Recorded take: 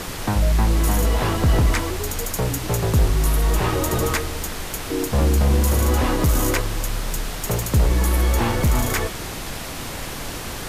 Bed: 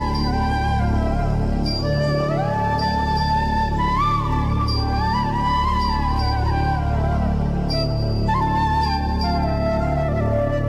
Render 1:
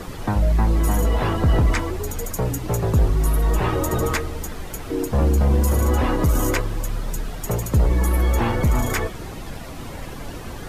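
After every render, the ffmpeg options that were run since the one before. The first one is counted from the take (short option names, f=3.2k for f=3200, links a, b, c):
-af "afftdn=nr=11:nf=-31"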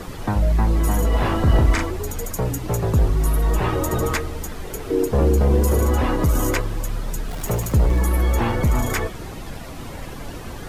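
-filter_complex "[0:a]asettb=1/sr,asplit=3[a][b][c];[a]atrim=end=1.094[d];[b]atrim=start=1.09:end=1.86,asetpts=PTS-STARTPTS,afade=t=in:d=0.004:c=qsin,afade=t=out:st=0.766:d=0.004:c=qsin,asplit=2[e][f];[f]adelay=40,volume=-4.5dB[g];[e][g]amix=inputs=2:normalize=0,atrim=end_sample=33957[h];[c]atrim=start=1.856[i];[d][h]acrossfade=d=0.004:c1=hsin:c2=qsin[j];[j][i]acrossfade=d=0.004:c1=qsin:c2=hsin,asettb=1/sr,asplit=3[k][l][m];[k]atrim=end=4.644[n];[l]atrim=start=4.64:end=5.85,asetpts=PTS-STARTPTS,afade=t=in:d=0.004:c=qsin,afade=t=out:st=1.206:d=0.004:c=qsin,equalizer=f=420:w=3.1:g=9.5[o];[m]atrim=start=5.846[p];[n][o]acrossfade=d=0.004:c1=hsin:c2=qsin[q];[q][p]acrossfade=d=0.004:c1=qsin:c2=hsin,asettb=1/sr,asplit=3[r][s][t];[r]atrim=end=7.294[u];[s]atrim=start=7.29:end=8.01,asetpts=PTS-STARTPTS,afade=t=in:d=0.004:c=qsin,afade=t=out:st=0.716:d=0.004:c=qsin,aeval=exprs='val(0)+0.5*0.0237*sgn(val(0))':c=same[v];[t]atrim=start=8.006[w];[u][v]acrossfade=d=0.004:c1=hsin:c2=qsin[x];[x][w]acrossfade=d=0.004:c1=qsin:c2=hsin"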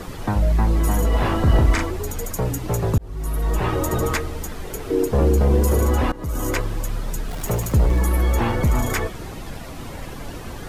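-filter_complex "[0:a]asplit=3[a][b][c];[a]atrim=end=2.98,asetpts=PTS-STARTPTS,afade=t=out:st=2.976:d=0.004:c=hsin[d];[b]atrim=start=2.98:end=6.12,asetpts=PTS-STARTPTS,afade=t=in:d=0.9:c=qsin,afade=t=out:st=3.136:d=0.004:c=hsin:silence=0.0944061[e];[c]atrim=start=6.12,asetpts=PTS-STARTPTS,afade=t=in:d=0.51:silence=0.0944061[f];[d][e][f]concat=n=3:v=0:a=1"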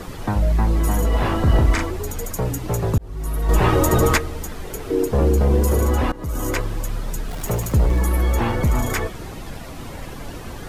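-filter_complex "[0:a]asplit=3[a][b][c];[a]atrim=end=3.492[d];[b]atrim=start=3.488:end=4.182,asetpts=PTS-STARTPTS,volume=5.5dB[e];[c]atrim=start=4.178[f];[d][e]acrossfade=d=0.004:c1=hsin:c2=hsin[g];[g][f]acrossfade=d=0.004:c1=hsin:c2=hsin"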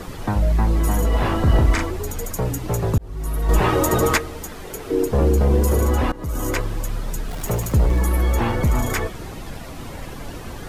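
-filter_complex "[0:a]asettb=1/sr,asplit=3[a][b][c];[a]atrim=end=3.614[d];[b]atrim=start=3.61:end=4.92,asetpts=PTS-STARTPTS,afade=t=in:d=0.004:c=qsin,afade=t=out:st=1.306:d=0.004:c=qsin,lowshelf=f=130:g=-7.5[e];[c]atrim=start=4.916[f];[d][e]acrossfade=d=0.004:c1=hsin:c2=qsin[g];[g][f]acrossfade=d=0.004:c1=qsin:c2=hsin"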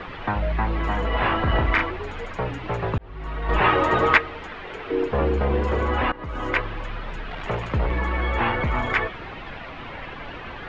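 -af "lowpass=f=2.9k:w=0.5412,lowpass=f=2.9k:w=1.3066,tiltshelf=f=670:g=-7.5"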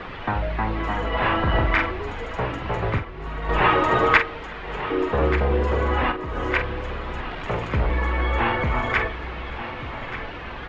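-filter_complex "[0:a]asplit=2[a][b];[b]adelay=46,volume=-9dB[c];[a][c]amix=inputs=2:normalize=0,aecho=1:1:1184|2368|3552:0.251|0.0854|0.029"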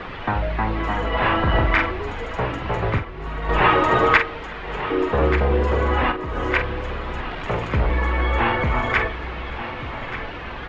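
-af "volume=2dB,alimiter=limit=-3dB:level=0:latency=1"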